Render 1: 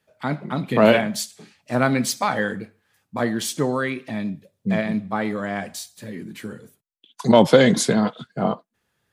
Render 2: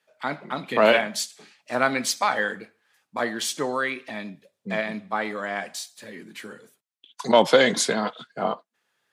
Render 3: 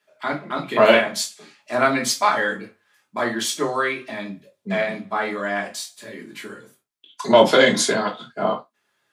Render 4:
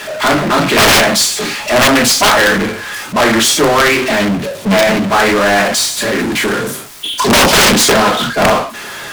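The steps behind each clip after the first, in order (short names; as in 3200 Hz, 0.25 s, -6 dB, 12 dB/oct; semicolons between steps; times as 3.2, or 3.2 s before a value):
weighting filter A
reverb, pre-delay 3 ms, DRR -1 dB
power-law curve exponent 0.35; wrapped overs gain 5 dB; Doppler distortion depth 0.43 ms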